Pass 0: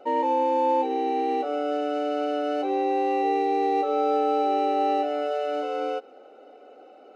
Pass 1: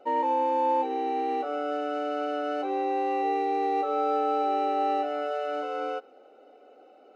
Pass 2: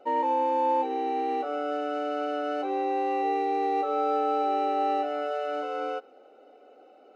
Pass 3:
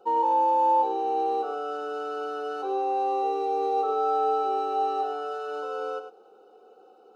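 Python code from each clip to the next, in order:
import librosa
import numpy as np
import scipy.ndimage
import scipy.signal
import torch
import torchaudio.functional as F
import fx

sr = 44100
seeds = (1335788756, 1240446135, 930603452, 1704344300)

y1 = fx.dynamic_eq(x, sr, hz=1300.0, q=1.2, threshold_db=-40.0, ratio=4.0, max_db=7)
y1 = y1 * librosa.db_to_amplitude(-5.0)
y2 = y1
y3 = fx.fixed_phaser(y2, sr, hz=410.0, stages=8)
y3 = y3 + 10.0 ** (-9.5 / 20.0) * np.pad(y3, (int(101 * sr / 1000.0), 0))[:len(y3)]
y3 = y3 * librosa.db_to_amplitude(3.0)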